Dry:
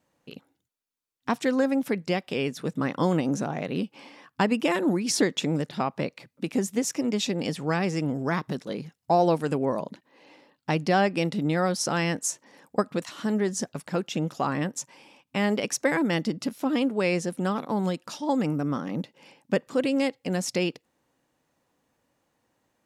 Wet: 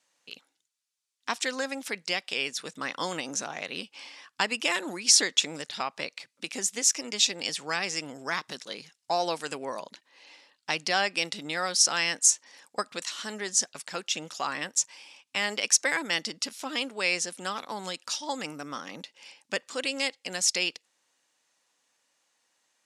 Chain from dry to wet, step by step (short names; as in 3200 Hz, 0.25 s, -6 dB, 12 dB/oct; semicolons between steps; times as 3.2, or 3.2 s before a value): weighting filter ITU-R 468; gain -3 dB